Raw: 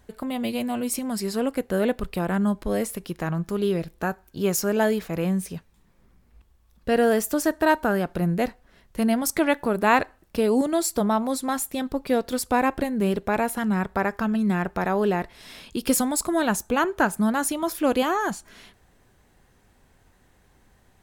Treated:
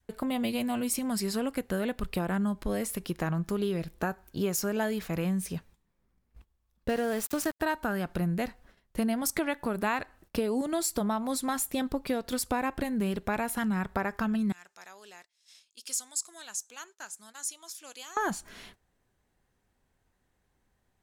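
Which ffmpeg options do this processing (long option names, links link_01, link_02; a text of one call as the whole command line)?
ffmpeg -i in.wav -filter_complex "[0:a]asettb=1/sr,asplit=3[link_01][link_02][link_03];[link_01]atrim=end=6.894[link_04];[link_02]atrim=start=6.89:end=7.6,asetpts=PTS-STARTPTS,afade=type=in:duration=0.004:curve=qsin,afade=type=out:start_time=0.706:duration=0.004:curve=qsin,aeval=exprs='val(0)*gte(abs(val(0)),0.0282)':channel_layout=same[link_05];[link_03]atrim=start=7.596[link_06];[link_04][link_05]acrossfade=duration=0.004:curve1=hsin:curve2=qsin[link_07];[link_07][link_06]acrossfade=duration=0.004:curve1=qsin:curve2=hsin,asettb=1/sr,asplit=3[link_08][link_09][link_10];[link_08]atrim=end=14.524[link_11];[link_09]atrim=start=14.52:end=18.17,asetpts=PTS-STARTPTS,afade=type=in:duration=0.004:curve=qsin,afade=type=out:start_time=3.646:duration=0.004:curve=qsin,bandpass=frequency=6600:width_type=q:width=2.3[link_12];[link_10]atrim=start=18.166[link_13];[link_11][link_12]acrossfade=duration=0.004:curve1=hsin:curve2=qsin[link_14];[link_14][link_13]acrossfade=duration=0.004:curve1=qsin:curve2=hsin,agate=range=-15dB:threshold=-52dB:ratio=16:detection=peak,adynamicequalizer=threshold=0.0178:dfrequency=470:dqfactor=0.78:tfrequency=470:tqfactor=0.78:attack=5:release=100:ratio=0.375:range=3.5:mode=cutabove:tftype=bell,acompressor=threshold=-26dB:ratio=5" out.wav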